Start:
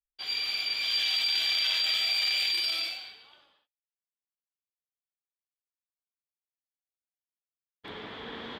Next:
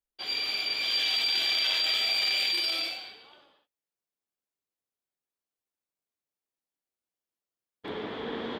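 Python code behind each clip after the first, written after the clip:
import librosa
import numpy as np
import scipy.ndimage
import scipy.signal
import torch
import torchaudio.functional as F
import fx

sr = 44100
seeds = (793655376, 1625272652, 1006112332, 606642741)

y = fx.peak_eq(x, sr, hz=370.0, db=9.0, octaves=2.5)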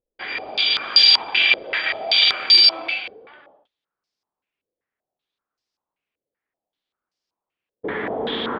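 y = fx.vibrato(x, sr, rate_hz=0.31, depth_cents=9.6)
y = fx.filter_held_lowpass(y, sr, hz=5.2, low_hz=500.0, high_hz=5000.0)
y = y * 10.0 ** (7.0 / 20.0)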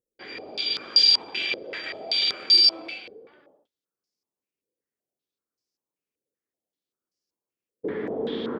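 y = fx.highpass(x, sr, hz=140.0, slope=6)
y = fx.band_shelf(y, sr, hz=1600.0, db=-12.5, octaves=2.9)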